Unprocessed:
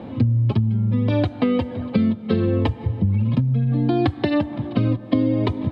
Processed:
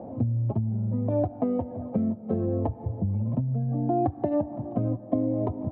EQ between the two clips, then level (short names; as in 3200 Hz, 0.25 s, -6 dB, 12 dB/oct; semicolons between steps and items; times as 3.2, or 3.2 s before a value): synth low-pass 680 Hz, resonance Q 3.9; dynamic EQ 500 Hz, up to -4 dB, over -31 dBFS, Q 1.8; -8.0 dB